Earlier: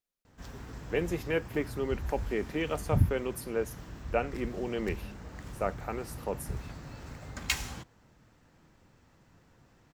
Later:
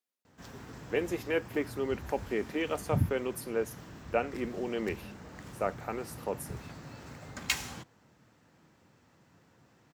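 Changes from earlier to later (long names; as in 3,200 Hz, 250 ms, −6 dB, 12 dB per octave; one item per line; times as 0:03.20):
speech: add linear-phase brick-wall high-pass 180 Hz
master: add high-pass filter 110 Hz 12 dB per octave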